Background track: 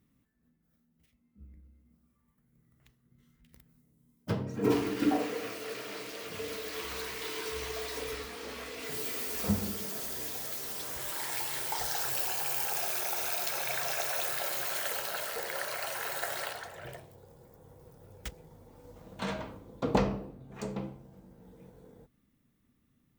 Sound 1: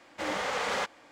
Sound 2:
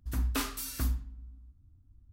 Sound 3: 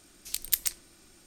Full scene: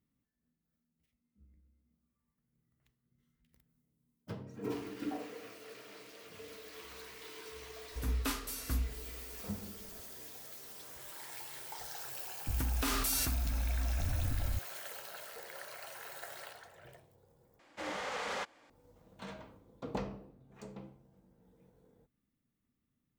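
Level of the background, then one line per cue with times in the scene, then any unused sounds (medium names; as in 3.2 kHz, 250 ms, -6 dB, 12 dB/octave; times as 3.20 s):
background track -11.5 dB
7.90 s: add 2 -3.5 dB
12.47 s: add 2 -6.5 dB + level flattener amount 100%
17.59 s: replace with 1 -7.5 dB
not used: 3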